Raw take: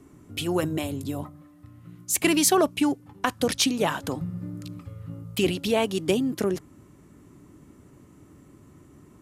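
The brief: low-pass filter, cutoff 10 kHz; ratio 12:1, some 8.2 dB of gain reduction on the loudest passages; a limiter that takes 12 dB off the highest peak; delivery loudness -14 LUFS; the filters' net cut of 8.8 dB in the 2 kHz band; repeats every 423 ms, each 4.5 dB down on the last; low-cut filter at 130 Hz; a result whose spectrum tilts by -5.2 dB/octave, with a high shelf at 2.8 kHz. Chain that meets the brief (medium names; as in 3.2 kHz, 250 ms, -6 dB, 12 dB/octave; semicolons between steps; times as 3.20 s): high-pass 130 Hz; low-pass 10 kHz; peaking EQ 2 kHz -8.5 dB; treble shelf 2.8 kHz -7.5 dB; compression 12:1, threshold -26 dBFS; peak limiter -25.5 dBFS; feedback delay 423 ms, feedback 60%, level -4.5 dB; trim +21 dB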